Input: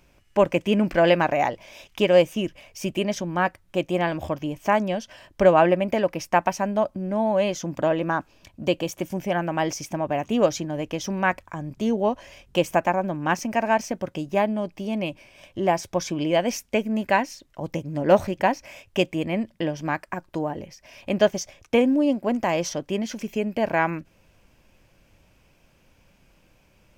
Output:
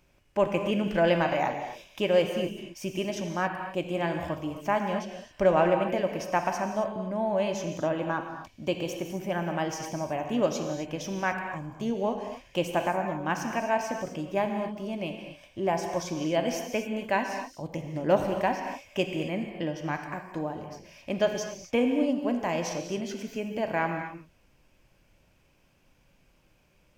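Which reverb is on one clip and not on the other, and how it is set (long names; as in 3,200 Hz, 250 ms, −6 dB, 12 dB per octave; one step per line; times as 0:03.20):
reverb whose tail is shaped and stops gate 290 ms flat, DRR 4 dB
level −6.5 dB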